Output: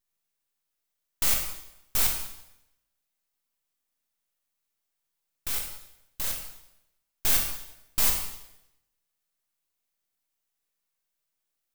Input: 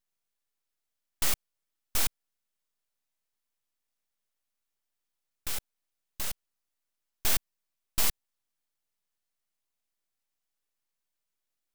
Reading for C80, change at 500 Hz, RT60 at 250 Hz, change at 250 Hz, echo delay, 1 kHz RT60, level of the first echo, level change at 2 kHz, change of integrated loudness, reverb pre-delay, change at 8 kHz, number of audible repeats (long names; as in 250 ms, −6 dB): 7.5 dB, +2.5 dB, 0.85 s, +2.5 dB, no echo audible, 0.80 s, no echo audible, +3.0 dB, +4.5 dB, 8 ms, +4.0 dB, no echo audible